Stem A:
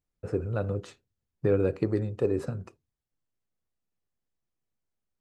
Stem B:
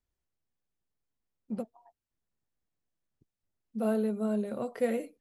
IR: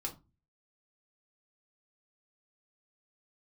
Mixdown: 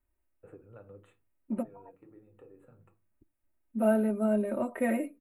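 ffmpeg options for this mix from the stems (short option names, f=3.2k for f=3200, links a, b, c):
-filter_complex "[0:a]highpass=f=270:p=1,acompressor=threshold=-35dB:ratio=6,adelay=200,volume=-16.5dB,asplit=2[a][b];[b]volume=-3dB[c];[1:a]bandreject=f=3.2k:w=5.1,aecho=1:1:3.2:0.94,volume=1.5dB,asplit=3[d][e][f];[e]volume=-20dB[g];[f]apad=whole_len=238468[h];[a][h]sidechaincompress=threshold=-47dB:ratio=8:attack=7.5:release=1280[i];[2:a]atrim=start_sample=2205[j];[c][g]amix=inputs=2:normalize=0[k];[k][j]afir=irnorm=-1:irlink=0[l];[i][d][l]amix=inputs=3:normalize=0,asuperstop=centerf=5200:order=4:qfactor=0.88"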